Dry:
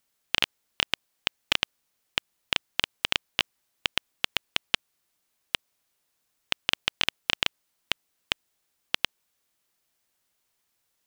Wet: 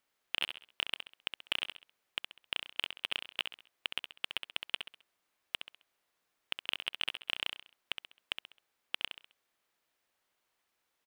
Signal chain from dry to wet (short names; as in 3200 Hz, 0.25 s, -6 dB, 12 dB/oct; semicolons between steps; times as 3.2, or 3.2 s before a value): soft clip -14.5 dBFS, distortion -7 dB; tone controls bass -8 dB, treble -10 dB; feedback echo 66 ms, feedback 37%, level -8 dB